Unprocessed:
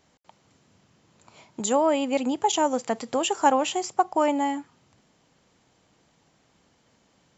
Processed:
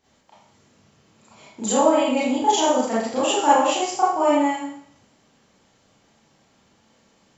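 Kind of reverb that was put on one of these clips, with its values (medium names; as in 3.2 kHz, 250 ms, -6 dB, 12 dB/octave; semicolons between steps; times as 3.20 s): Schroeder reverb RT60 0.64 s, combs from 28 ms, DRR -10 dB; trim -6 dB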